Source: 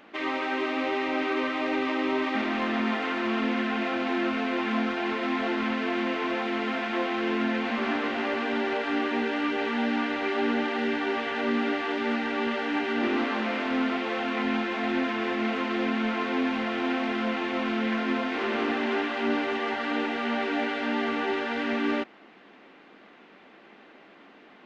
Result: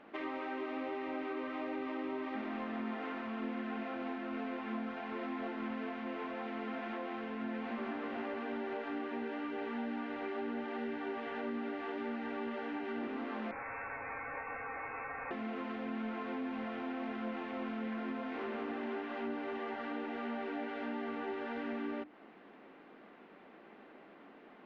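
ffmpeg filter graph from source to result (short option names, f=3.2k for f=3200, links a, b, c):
-filter_complex "[0:a]asettb=1/sr,asplit=3[a][b][c];[a]atrim=end=13.514[d];[b]atrim=start=13.51:end=15.31,asetpts=PTS-STARTPTS,afade=t=in:d=0.004:c=qsin,afade=t=out:st=1.796:d=0.004:c=qsin,highpass=780,lowpass=f=2.5k:t=q:w=0.5098,lowpass=f=2.5k:t=q:w=0.6013,lowpass=f=2.5k:t=q:w=0.9,lowpass=f=2.5k:t=q:w=2.563,afreqshift=-2900[e];[c]atrim=start=15.306[f];[d][e]acrossfade=d=0.004:c1=hsin:c2=qsin[g];[g][f]acrossfade=d=0.004:c1=qsin:c2=hsin,acompressor=threshold=-33dB:ratio=6,lowpass=f=1.2k:p=1,bandreject=f=50:t=h:w=6,bandreject=f=100:t=h:w=6,bandreject=f=150:t=h:w=6,bandreject=f=200:t=h:w=6,bandreject=f=250:t=h:w=6,bandreject=f=300:t=h:w=6,bandreject=f=350:t=h:w=6,volume=-2dB"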